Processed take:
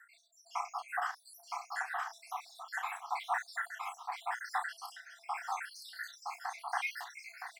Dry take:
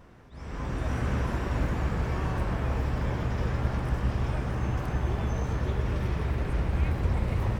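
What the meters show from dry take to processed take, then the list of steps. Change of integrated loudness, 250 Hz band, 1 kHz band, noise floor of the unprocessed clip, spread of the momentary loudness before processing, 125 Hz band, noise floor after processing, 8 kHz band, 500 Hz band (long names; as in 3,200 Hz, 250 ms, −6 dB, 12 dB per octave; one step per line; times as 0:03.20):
−9.5 dB, below −40 dB, +0.5 dB, −42 dBFS, 2 LU, below −40 dB, −64 dBFS, can't be measured, −16.0 dB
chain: time-frequency cells dropped at random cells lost 82%
parametric band 2,900 Hz −9 dB 0.36 octaves
downward compressor 6 to 1, threshold −39 dBFS, peak gain reduction 16 dB
rotating-speaker cabinet horn 5 Hz, later 0.8 Hz, at 0:03.38
linear-phase brick-wall high-pass 680 Hz
double-tracking delay 33 ms −7 dB
single-tap delay 966 ms −3.5 dB
level +15 dB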